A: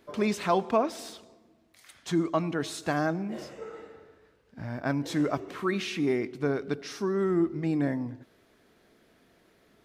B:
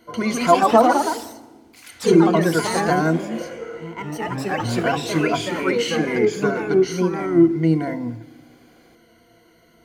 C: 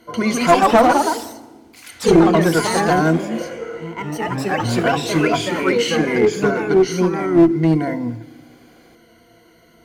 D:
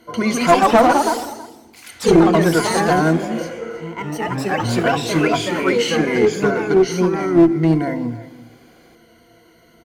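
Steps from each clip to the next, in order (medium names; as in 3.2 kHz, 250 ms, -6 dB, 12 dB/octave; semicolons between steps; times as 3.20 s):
rippled EQ curve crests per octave 1.9, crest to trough 17 dB; ever faster or slower copies 182 ms, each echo +2 st, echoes 3; FDN reverb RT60 1.3 s, low-frequency decay 1.5×, high-frequency decay 1×, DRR 17.5 dB; trim +4.5 dB
one-sided clip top -13 dBFS; trim +3.5 dB
delay 324 ms -17 dB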